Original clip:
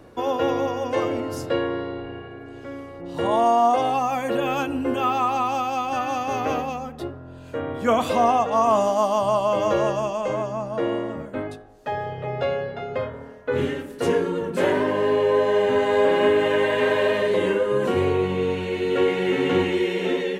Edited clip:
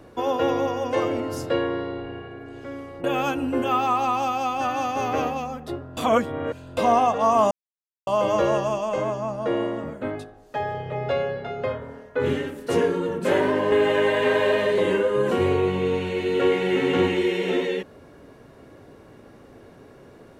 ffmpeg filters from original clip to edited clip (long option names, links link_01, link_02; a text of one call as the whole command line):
ffmpeg -i in.wav -filter_complex "[0:a]asplit=7[link_01][link_02][link_03][link_04][link_05][link_06][link_07];[link_01]atrim=end=3.042[link_08];[link_02]atrim=start=4.358:end=7.292[link_09];[link_03]atrim=start=7.288:end=8.092,asetpts=PTS-STARTPTS,areverse[link_10];[link_04]atrim=start=8.088:end=8.83,asetpts=PTS-STARTPTS,afade=type=out:start_time=0.738:duration=0.004:curve=hsin[link_11];[link_05]atrim=start=8.83:end=9.39,asetpts=PTS-STARTPTS,volume=0[link_12];[link_06]atrim=start=9.39:end=15.042,asetpts=PTS-STARTPTS,afade=type=in:duration=0.004:curve=hsin[link_13];[link_07]atrim=start=16.278[link_14];[link_08][link_09]acrossfade=duration=0.004:curve1=hsin:curve2=hsin[link_15];[link_15][link_10]acrossfade=duration=0.004:curve1=hsin:curve2=hsin[link_16];[link_11][link_12][link_13]concat=n=3:v=0:a=1[link_17];[link_16][link_17]acrossfade=duration=0.004:curve1=hsin:curve2=hsin[link_18];[link_18][link_14]acrossfade=duration=0.004:curve1=hsin:curve2=hsin" out.wav